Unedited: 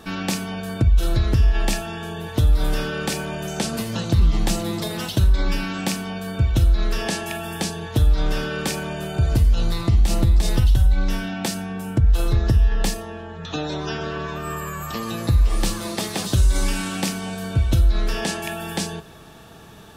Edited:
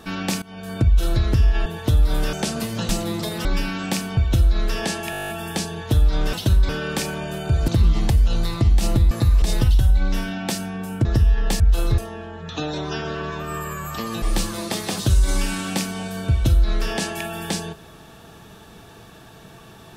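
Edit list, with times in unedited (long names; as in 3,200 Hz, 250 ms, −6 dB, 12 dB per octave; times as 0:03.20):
0:00.42–0:00.79: fade in, from −20.5 dB
0:01.66–0:02.16: remove
0:02.83–0:03.50: remove
0:04.06–0:04.48: move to 0:09.37
0:05.04–0:05.40: move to 0:08.38
0:06.12–0:06.40: remove
0:07.34: stutter 0.02 s, 10 plays
0:12.01–0:12.39: move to 0:12.94
0:15.18–0:15.49: move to 0:10.38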